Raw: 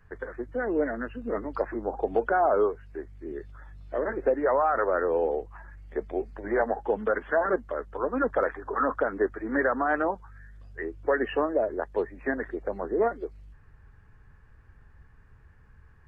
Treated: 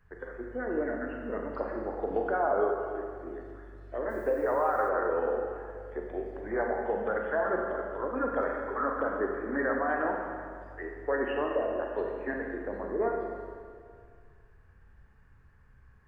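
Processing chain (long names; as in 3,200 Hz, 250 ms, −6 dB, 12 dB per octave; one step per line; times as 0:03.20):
four-comb reverb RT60 2.1 s, combs from 32 ms, DRR 0.5 dB
0:04.09–0:04.88: background noise blue −59 dBFS
level −6 dB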